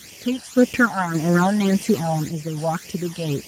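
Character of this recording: a quantiser's noise floor 6-bit, dither triangular; random-step tremolo; phasing stages 12, 1.8 Hz, lowest notch 370–1400 Hz; Speex

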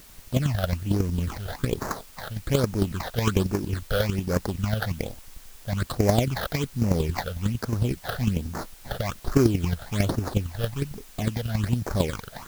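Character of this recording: chopped level 11 Hz, depth 60%, duty 10%; aliases and images of a low sample rate 2.8 kHz, jitter 20%; phasing stages 8, 1.2 Hz, lowest notch 290–3400 Hz; a quantiser's noise floor 10-bit, dither triangular

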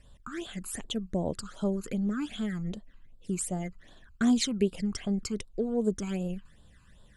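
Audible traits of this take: phasing stages 12, 2.6 Hz, lowest notch 580–2100 Hz

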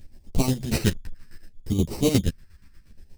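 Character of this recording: aliases and images of a low sample rate 3.4 kHz, jitter 0%; phasing stages 2, 0.67 Hz, lowest notch 630–1500 Hz; chopped level 8.4 Hz, depth 65%, duty 45%; a shimmering, thickened sound

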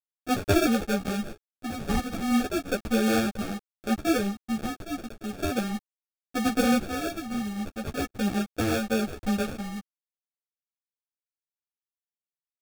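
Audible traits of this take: a quantiser's noise floor 8-bit, dither none; phasing stages 12, 0.37 Hz, lowest notch 440–2900 Hz; aliases and images of a low sample rate 1 kHz, jitter 0%; a shimmering, thickened sound

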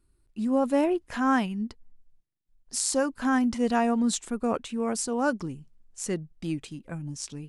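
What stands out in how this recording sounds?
noise floor -68 dBFS; spectral tilt -4.0 dB/octave

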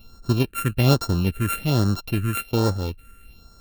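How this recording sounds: a buzz of ramps at a fixed pitch in blocks of 32 samples; phasing stages 4, 1.2 Hz, lowest notch 790–2500 Hz

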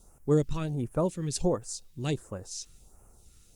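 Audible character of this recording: a quantiser's noise floor 12-bit, dither triangular; phasing stages 2, 1.4 Hz, lowest notch 720–3700 Hz; Opus

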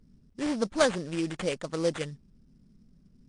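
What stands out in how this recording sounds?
aliases and images of a low sample rate 5.3 kHz, jitter 20%; MP3

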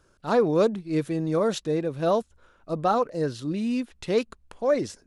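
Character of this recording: noise floor -63 dBFS; spectral tilt -6.0 dB/octave

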